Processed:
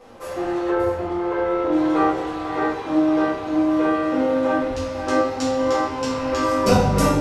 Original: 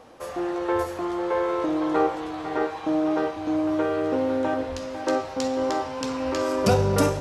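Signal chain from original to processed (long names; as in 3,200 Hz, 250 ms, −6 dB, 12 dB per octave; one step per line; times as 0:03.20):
0:00.69–0:01.72: high-shelf EQ 3,700 Hz −11.5 dB
rectangular room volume 83 cubic metres, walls mixed, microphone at 2 metres
level −4.5 dB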